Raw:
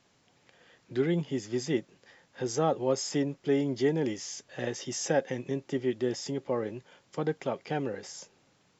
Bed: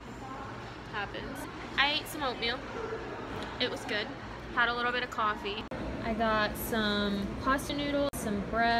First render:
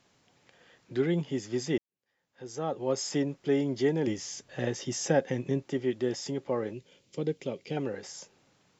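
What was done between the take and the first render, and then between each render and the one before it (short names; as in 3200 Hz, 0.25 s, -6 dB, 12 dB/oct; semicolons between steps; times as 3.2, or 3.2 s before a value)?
1.78–3.02 fade in quadratic; 4.07–5.63 low shelf 250 Hz +7 dB; 6.73–7.77 band shelf 1100 Hz -12.5 dB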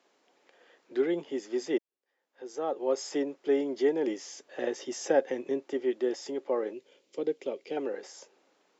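HPF 330 Hz 24 dB/oct; tilt -2 dB/oct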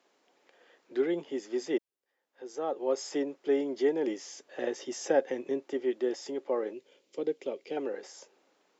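gain -1 dB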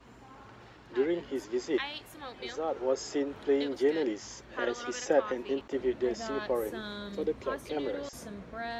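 add bed -10.5 dB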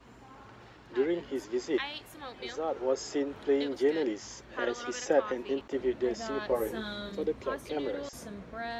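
6.47–7.12 doubler 18 ms -3 dB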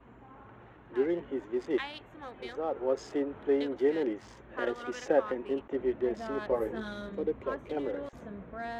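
Wiener smoothing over 9 samples; LPF 3100 Hz 6 dB/oct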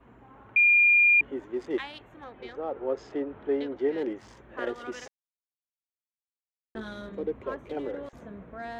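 0.56–1.21 bleep 2410 Hz -16 dBFS; 2.24–3.98 air absorption 110 m; 5.08–6.75 mute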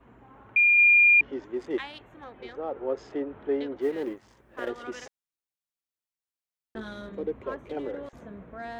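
0.78–1.45 synth low-pass 5200 Hz, resonance Q 5.7; 3.81–4.69 G.711 law mismatch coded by A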